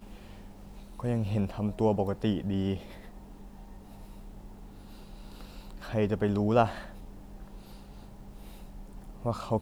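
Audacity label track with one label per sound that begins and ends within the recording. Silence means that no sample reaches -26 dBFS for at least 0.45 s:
1.040000	2.740000	sound
5.940000	6.660000	sound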